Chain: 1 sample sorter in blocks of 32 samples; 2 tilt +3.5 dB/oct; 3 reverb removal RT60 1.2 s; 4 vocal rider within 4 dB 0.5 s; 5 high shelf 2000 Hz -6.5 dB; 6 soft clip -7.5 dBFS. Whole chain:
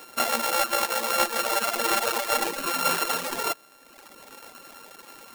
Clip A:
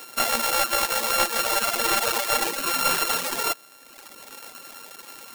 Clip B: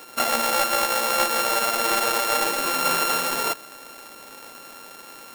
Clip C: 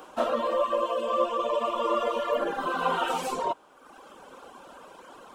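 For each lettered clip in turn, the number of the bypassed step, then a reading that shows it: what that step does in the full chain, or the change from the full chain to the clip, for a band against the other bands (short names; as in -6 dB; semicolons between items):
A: 5, 500 Hz band -3.0 dB; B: 3, crest factor change -3.0 dB; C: 1, crest factor change -3.5 dB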